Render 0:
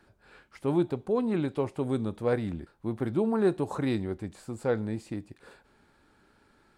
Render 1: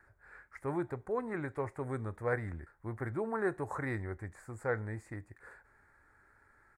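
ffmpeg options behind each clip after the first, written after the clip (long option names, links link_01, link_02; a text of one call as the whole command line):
ffmpeg -i in.wav -af "firequalizer=gain_entry='entry(100,0);entry(190,-13);entry(420,-6);entry(1900,7);entry(2900,-22);entry(7100,-5)':delay=0.05:min_phase=1,volume=-1.5dB" out.wav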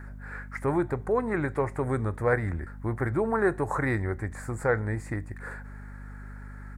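ffmpeg -i in.wav -filter_complex "[0:a]asplit=2[link_01][link_02];[link_02]acompressor=threshold=-44dB:ratio=6,volume=2dB[link_03];[link_01][link_03]amix=inputs=2:normalize=0,aeval=exprs='val(0)+0.00447*(sin(2*PI*50*n/s)+sin(2*PI*2*50*n/s)/2+sin(2*PI*3*50*n/s)/3+sin(2*PI*4*50*n/s)/4+sin(2*PI*5*50*n/s)/5)':channel_layout=same,volume=6.5dB" out.wav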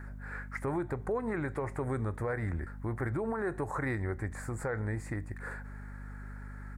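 ffmpeg -i in.wav -af "alimiter=limit=-22.5dB:level=0:latency=1:release=106,volume=-2dB" out.wav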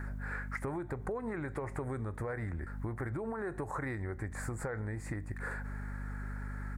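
ffmpeg -i in.wav -af "acompressor=threshold=-39dB:ratio=6,volume=4.5dB" out.wav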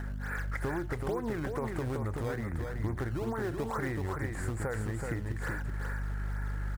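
ffmpeg -i in.wav -filter_complex "[0:a]asplit=2[link_01][link_02];[link_02]acrusher=samples=18:mix=1:aa=0.000001:lfo=1:lforange=28.8:lforate=2.3,volume=-7.5dB[link_03];[link_01][link_03]amix=inputs=2:normalize=0,aecho=1:1:378:0.596" out.wav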